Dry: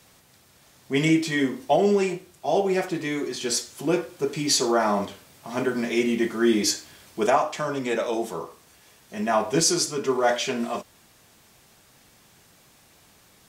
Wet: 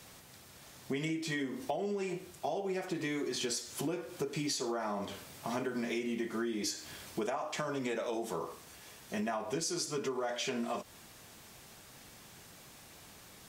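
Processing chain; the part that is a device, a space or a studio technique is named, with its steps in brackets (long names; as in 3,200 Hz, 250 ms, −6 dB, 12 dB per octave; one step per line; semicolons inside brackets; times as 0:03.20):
serial compression, peaks first (downward compressor, threshold −29 dBFS, peak gain reduction 13.5 dB; downward compressor 2.5 to 1, threshold −36 dBFS, peak gain reduction 7 dB)
level +1.5 dB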